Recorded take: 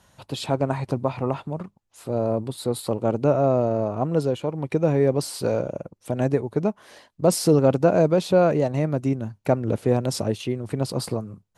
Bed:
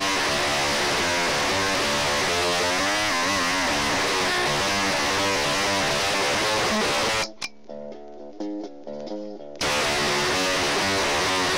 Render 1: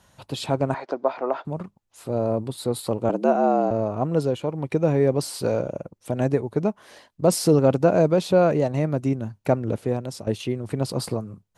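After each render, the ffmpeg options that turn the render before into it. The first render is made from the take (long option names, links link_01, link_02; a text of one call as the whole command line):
ffmpeg -i in.wav -filter_complex "[0:a]asettb=1/sr,asplit=3[link_01][link_02][link_03];[link_01]atrim=end=0.744[link_04];[link_02]atrim=start=0.74:end=1.45,asetpts=PTS-STARTPTS,afade=type=in:duration=0.004:curve=qsin,afade=type=out:start_time=0.706:duration=0.004:curve=qsin,highpass=frequency=310:width=0.5412,highpass=frequency=310:width=1.3066,equalizer=frequency=650:width_type=q:width=4:gain=6,equalizer=frequency=1500:width_type=q:width=4:gain=7,equalizer=frequency=2700:width_type=q:width=4:gain=-6,equalizer=frequency=4000:width_type=q:width=4:gain=-3,lowpass=frequency=5400:width=0.5412,lowpass=frequency=5400:width=1.3066[link_05];[link_03]atrim=start=1.446[link_06];[link_04][link_05]acrossfade=duration=0.004:curve1=hsin:curve2=qsin[link_07];[link_07][link_06]acrossfade=duration=0.004:curve1=qsin:curve2=hsin,asettb=1/sr,asplit=3[link_08][link_09][link_10];[link_08]atrim=end=3.094[link_11];[link_09]atrim=start=3.09:end=3.71,asetpts=PTS-STARTPTS,afade=type=in:duration=0.004:curve=qsin,afade=type=out:start_time=0.616:duration=0.004:curve=qsin,afreqshift=85[link_12];[link_10]atrim=start=3.706[link_13];[link_11][link_12]acrossfade=duration=0.004:curve1=hsin:curve2=qsin[link_14];[link_14][link_13]acrossfade=duration=0.004:curve1=qsin:curve2=hsin,asplit=2[link_15][link_16];[link_15]atrim=end=10.27,asetpts=PTS-STARTPTS,afade=type=out:start_time=9.53:duration=0.74:silence=0.237137[link_17];[link_16]atrim=start=10.27,asetpts=PTS-STARTPTS,afade=type=in:duration=0.004:curve=hsin:silence=0.237137[link_18];[link_17][link_18]concat=n=2:v=0:a=1" out.wav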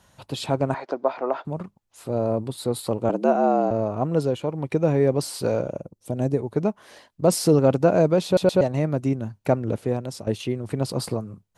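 ffmpeg -i in.wav -filter_complex "[0:a]asettb=1/sr,asplit=3[link_01][link_02][link_03];[link_01]atrim=end=5.804[link_04];[link_02]atrim=start=5.8:end=6.39,asetpts=PTS-STARTPTS,afade=type=in:duration=0.004:curve=qsin,afade=type=out:start_time=0.586:duration=0.004:curve=qsin,equalizer=frequency=1700:width=0.6:gain=-10[link_05];[link_03]atrim=start=6.386[link_06];[link_04][link_05]acrossfade=duration=0.004:curve1=hsin:curve2=qsin[link_07];[link_07][link_06]acrossfade=duration=0.004:curve1=qsin:curve2=hsin,asplit=4[link_08][link_09][link_10][link_11];[link_08]atrim=end=8.372[link_12];[link_09]atrim=start=8.248:end=8.372[link_13];[link_10]atrim=start=8.248:end=8.372[link_14];[link_11]atrim=start=8.608[link_15];[link_12][link_13]acrossfade=duration=0.004:curve1=hsin:curve2=hsin[link_16];[link_16][link_14]acrossfade=duration=0.004:curve1=hsin:curve2=hsin[link_17];[link_17][link_15]acrossfade=duration=0.004:curve1=hsin:curve2=hsin" out.wav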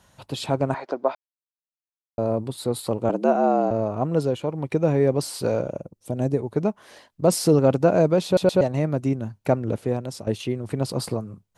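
ffmpeg -i in.wav -filter_complex "[0:a]asplit=3[link_01][link_02][link_03];[link_01]atrim=end=1.15,asetpts=PTS-STARTPTS,afade=type=out:start_time=1.146:duration=0.004:curve=hsin[link_04];[link_02]atrim=start=1.15:end=2.18,asetpts=PTS-STARTPTS,volume=0[link_05];[link_03]atrim=start=2.18,asetpts=PTS-STARTPTS,afade=type=in:duration=0.004:curve=hsin[link_06];[link_04][link_05][link_06]concat=n=3:v=0:a=1" out.wav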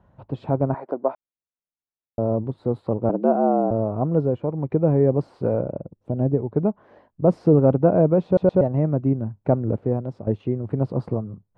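ffmpeg -i in.wav -af "lowpass=1000,lowshelf=frequency=260:gain=4.5" out.wav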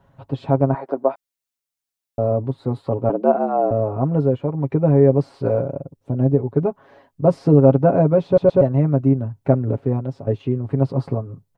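ffmpeg -i in.wav -af "highshelf=frequency=2000:gain=9,aecho=1:1:7.3:0.71" out.wav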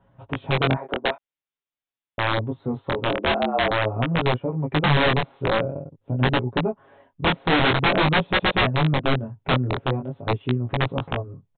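ffmpeg -i in.wav -af "aresample=8000,aeval=exprs='(mod(3.16*val(0)+1,2)-1)/3.16':channel_layout=same,aresample=44100,flanger=delay=16.5:depth=7.6:speed=0.47" out.wav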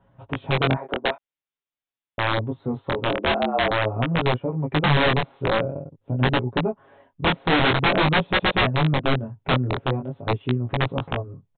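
ffmpeg -i in.wav -af anull out.wav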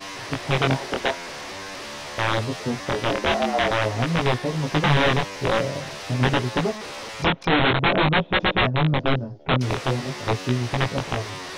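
ffmpeg -i in.wav -i bed.wav -filter_complex "[1:a]volume=-12dB[link_01];[0:a][link_01]amix=inputs=2:normalize=0" out.wav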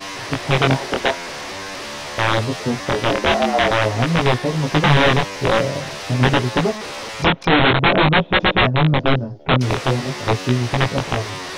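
ffmpeg -i in.wav -af "volume=5dB" out.wav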